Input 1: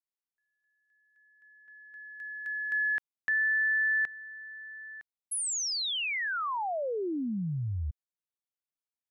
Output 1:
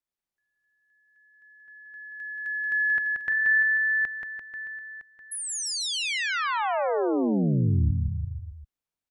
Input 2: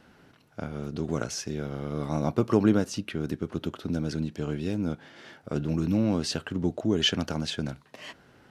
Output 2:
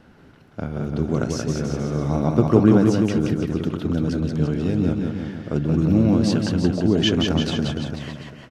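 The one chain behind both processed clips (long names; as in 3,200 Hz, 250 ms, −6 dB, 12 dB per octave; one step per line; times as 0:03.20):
spectral tilt −1.5 dB per octave
on a send: bouncing-ball delay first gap 180 ms, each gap 0.9×, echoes 5
on the sum: level +3.5 dB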